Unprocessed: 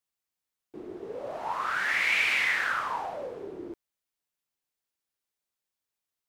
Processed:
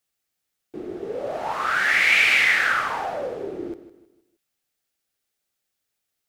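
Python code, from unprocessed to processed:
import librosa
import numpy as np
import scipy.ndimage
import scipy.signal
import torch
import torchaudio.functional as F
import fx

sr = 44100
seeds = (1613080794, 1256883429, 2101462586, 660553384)

y = fx.peak_eq(x, sr, hz=1000.0, db=-10.5, octaves=0.21)
y = fx.echo_feedback(y, sr, ms=157, feedback_pct=39, wet_db=-14)
y = y * 10.0 ** (8.0 / 20.0)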